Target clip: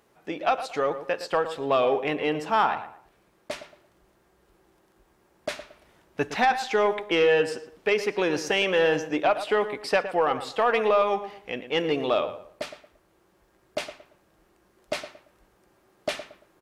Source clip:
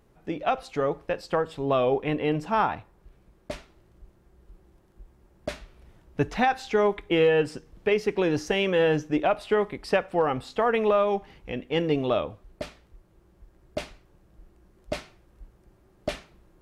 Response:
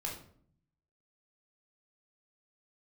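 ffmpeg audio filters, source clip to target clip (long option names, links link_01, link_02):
-filter_complex "[0:a]highpass=frequency=650:poles=1,asoftclip=type=tanh:threshold=-16dB,asplit=2[link_01][link_02];[link_02]adelay=114,lowpass=frequency=2200:poles=1,volume=-11dB,asplit=2[link_03][link_04];[link_04]adelay=114,lowpass=frequency=2200:poles=1,volume=0.31,asplit=2[link_05][link_06];[link_06]adelay=114,lowpass=frequency=2200:poles=1,volume=0.31[link_07];[link_03][link_05][link_07]amix=inputs=3:normalize=0[link_08];[link_01][link_08]amix=inputs=2:normalize=0,volume=5dB"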